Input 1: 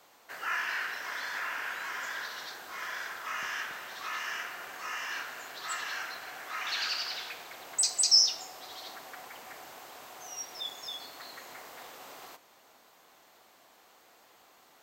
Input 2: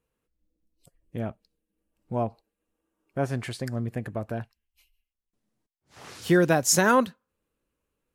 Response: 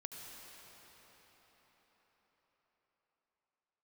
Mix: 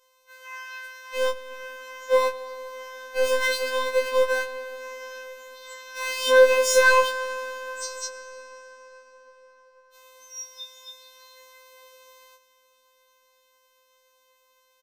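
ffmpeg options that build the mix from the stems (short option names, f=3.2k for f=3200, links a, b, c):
-filter_complex "[0:a]aecho=1:1:4.2:0.31,volume=-6.5dB,asplit=3[a][b][c];[a]atrim=end=8.08,asetpts=PTS-STARTPTS,afade=t=out:st=8.076:d=0.004:c=hsin[d];[b]atrim=start=8.08:end=9.93,asetpts=PTS-STARTPTS,volume=0[e];[c]atrim=start=9.93,asetpts=PTS-STARTPTS,afade=t=in:d=0.004:c=hsin[f];[d][e][f]concat=n=3:v=0:a=1,asplit=2[g][h];[h]volume=-6dB[i];[1:a]acrusher=bits=6:mix=0:aa=0.000001,asplit=2[j][k];[k]highpass=f=720:p=1,volume=30dB,asoftclip=type=tanh:threshold=-9dB[l];[j][l]amix=inputs=2:normalize=0,lowpass=f=2.1k:p=1,volume=-6dB,asplit=2[m][n];[n]adelay=3.2,afreqshift=-2.4[o];[m][o]amix=inputs=2:normalize=1,volume=0dB,asplit=3[p][q][r];[q]volume=-4dB[s];[r]apad=whole_len=653992[t];[g][t]sidechaincompress=threshold=-49dB:ratio=8:attack=21:release=167[u];[2:a]atrim=start_sample=2205[v];[i][s]amix=inputs=2:normalize=0[w];[w][v]afir=irnorm=-1:irlink=0[x];[u][p][x]amix=inputs=3:normalize=0,afftfilt=real='hypot(re,im)*cos(PI*b)':imag='0':win_size=1024:overlap=0.75,afftfilt=real='re*3.46*eq(mod(b,12),0)':imag='im*3.46*eq(mod(b,12),0)':win_size=2048:overlap=0.75"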